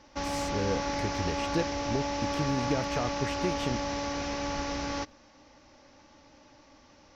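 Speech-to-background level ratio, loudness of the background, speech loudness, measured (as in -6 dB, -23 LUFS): -2.0 dB, -32.5 LUFS, -34.5 LUFS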